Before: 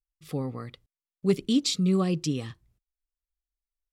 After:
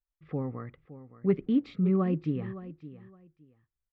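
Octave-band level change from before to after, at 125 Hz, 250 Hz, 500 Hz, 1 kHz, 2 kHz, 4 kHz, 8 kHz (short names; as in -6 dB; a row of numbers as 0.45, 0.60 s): -1.5 dB, -1.5 dB, -1.5 dB, -2.0 dB, -5.5 dB, under -20 dB, under -40 dB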